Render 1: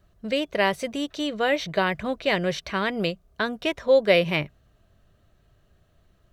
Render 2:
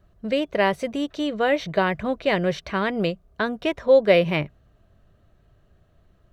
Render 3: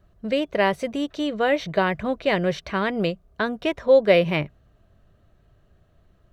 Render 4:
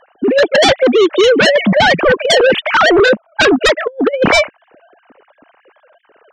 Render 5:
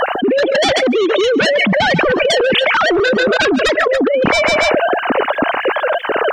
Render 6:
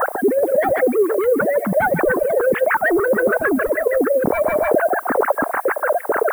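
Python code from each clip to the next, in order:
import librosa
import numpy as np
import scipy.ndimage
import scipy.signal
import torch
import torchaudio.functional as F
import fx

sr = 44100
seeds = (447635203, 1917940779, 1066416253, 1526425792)

y1 = fx.high_shelf(x, sr, hz=2400.0, db=-8.5)
y1 = F.gain(torch.from_numpy(y1), 3.0).numpy()
y2 = y1
y3 = fx.sine_speech(y2, sr)
y3 = fx.over_compress(y3, sr, threshold_db=-27.0, ratio=-0.5)
y3 = fx.fold_sine(y3, sr, drive_db=12, ceiling_db=-13.0)
y3 = F.gain(torch.from_numpy(y3), 7.5).numpy()
y4 = fx.echo_feedback(y3, sr, ms=141, feedback_pct=23, wet_db=-24)
y4 = fx.env_flatten(y4, sr, amount_pct=100)
y4 = F.gain(torch.from_numpy(y4), -6.0).numpy()
y5 = fx.filter_lfo_lowpass(y4, sr, shape='sine', hz=6.7, low_hz=430.0, high_hz=1900.0, q=2.3)
y5 = fx.dmg_noise_colour(y5, sr, seeds[0], colour='blue', level_db=-32.0)
y5 = fx.band_shelf(y5, sr, hz=4300.0, db=-15.5, octaves=1.7)
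y5 = F.gain(torch.from_numpy(y5), -6.0).numpy()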